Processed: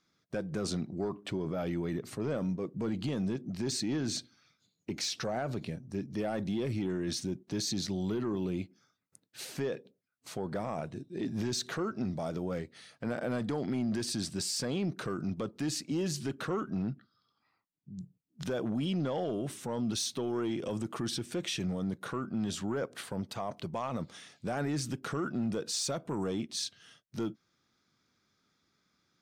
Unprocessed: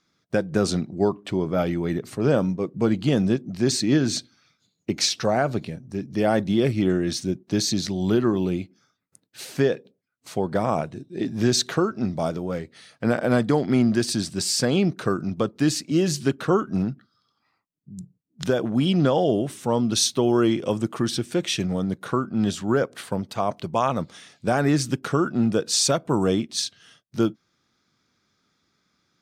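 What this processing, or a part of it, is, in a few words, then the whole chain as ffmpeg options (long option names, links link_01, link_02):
soft clipper into limiter: -filter_complex "[0:a]asplit=3[link_01][link_02][link_03];[link_01]afade=type=out:start_time=16.7:duration=0.02[link_04];[link_02]lowpass=frequency=5400:width=0.5412,lowpass=frequency=5400:width=1.3066,afade=type=in:start_time=16.7:duration=0.02,afade=type=out:start_time=17.99:duration=0.02[link_05];[link_03]afade=type=in:start_time=17.99:duration=0.02[link_06];[link_04][link_05][link_06]amix=inputs=3:normalize=0,asoftclip=type=tanh:threshold=-12dB,alimiter=limit=-21dB:level=0:latency=1:release=42,volume=-5dB"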